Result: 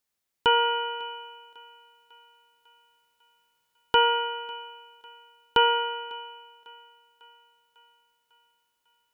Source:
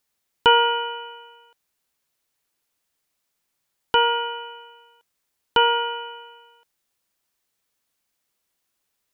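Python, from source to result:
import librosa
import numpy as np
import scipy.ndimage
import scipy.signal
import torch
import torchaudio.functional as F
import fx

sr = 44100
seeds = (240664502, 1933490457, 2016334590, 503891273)

p1 = fx.rider(x, sr, range_db=3, speed_s=0.5)
p2 = p1 + fx.echo_thinned(p1, sr, ms=549, feedback_pct=57, hz=380.0, wet_db=-23.5, dry=0)
y = F.gain(torch.from_numpy(p2), -3.0).numpy()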